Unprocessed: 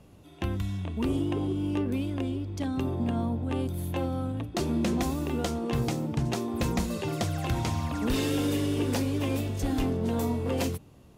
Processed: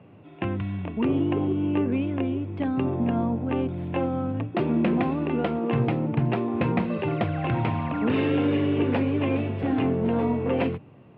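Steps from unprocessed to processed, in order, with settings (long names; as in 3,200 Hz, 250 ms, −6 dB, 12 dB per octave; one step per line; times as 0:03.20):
elliptic band-pass filter 110–2,600 Hz, stop band 40 dB
level +5.5 dB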